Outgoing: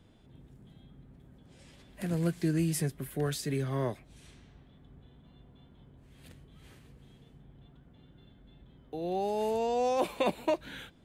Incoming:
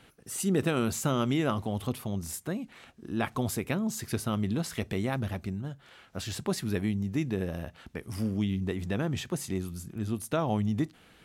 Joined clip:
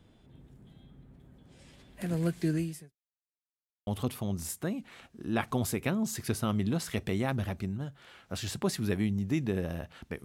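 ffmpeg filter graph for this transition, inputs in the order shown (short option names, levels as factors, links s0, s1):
-filter_complex "[0:a]apad=whole_dur=10.24,atrim=end=10.24,asplit=2[s0][s1];[s0]atrim=end=2.97,asetpts=PTS-STARTPTS,afade=t=out:st=2.54:d=0.43:c=qua[s2];[s1]atrim=start=2.97:end=3.87,asetpts=PTS-STARTPTS,volume=0[s3];[1:a]atrim=start=1.71:end=8.08,asetpts=PTS-STARTPTS,afade=t=in:d=0.004:c=hsin[s4];[s2][s3][s4]concat=n=3:v=0:a=1"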